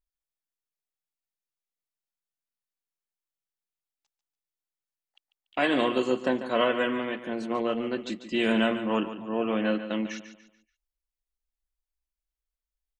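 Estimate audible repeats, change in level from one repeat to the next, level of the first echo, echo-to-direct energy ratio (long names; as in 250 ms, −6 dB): 3, −9.0 dB, −11.5 dB, −11.0 dB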